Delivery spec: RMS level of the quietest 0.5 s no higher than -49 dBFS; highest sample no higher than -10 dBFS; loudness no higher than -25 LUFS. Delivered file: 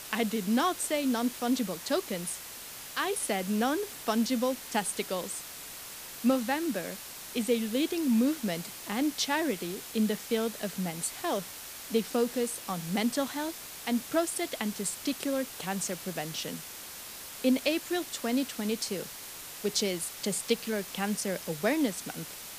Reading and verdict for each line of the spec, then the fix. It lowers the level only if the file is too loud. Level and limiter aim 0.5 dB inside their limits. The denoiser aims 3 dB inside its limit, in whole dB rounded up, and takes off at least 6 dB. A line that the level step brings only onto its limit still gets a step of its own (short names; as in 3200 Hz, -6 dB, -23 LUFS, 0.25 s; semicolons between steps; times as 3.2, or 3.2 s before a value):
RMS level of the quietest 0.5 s -44 dBFS: fail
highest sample -12.0 dBFS: OK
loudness -31.5 LUFS: OK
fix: denoiser 8 dB, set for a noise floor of -44 dBFS